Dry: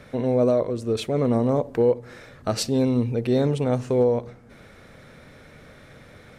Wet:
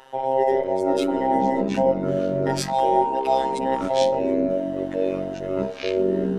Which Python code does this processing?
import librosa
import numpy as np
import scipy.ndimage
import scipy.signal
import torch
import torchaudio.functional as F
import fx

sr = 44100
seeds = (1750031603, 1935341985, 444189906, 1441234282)

y = fx.band_invert(x, sr, width_hz=1000)
y = fx.robotise(y, sr, hz=133.0)
y = fx.echo_pitch(y, sr, ms=318, semitones=-6, count=3, db_per_echo=-3.0)
y = fx.graphic_eq(y, sr, hz=(250, 1000, 4000, 8000), db=(-6, 3, 3, 5), at=(2.73, 3.59))